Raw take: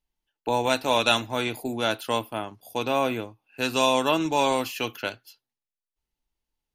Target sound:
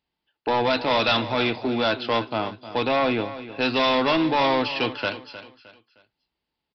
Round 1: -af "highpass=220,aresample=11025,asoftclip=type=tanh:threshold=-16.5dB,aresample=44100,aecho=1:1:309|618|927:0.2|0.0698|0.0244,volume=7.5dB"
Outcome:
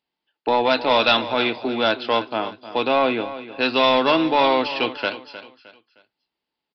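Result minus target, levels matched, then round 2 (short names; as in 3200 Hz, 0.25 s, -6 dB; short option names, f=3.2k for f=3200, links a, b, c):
125 Hz band -8.5 dB; soft clip: distortion -7 dB
-af "highpass=100,aresample=11025,asoftclip=type=tanh:threshold=-24dB,aresample=44100,aecho=1:1:309|618|927:0.2|0.0698|0.0244,volume=7.5dB"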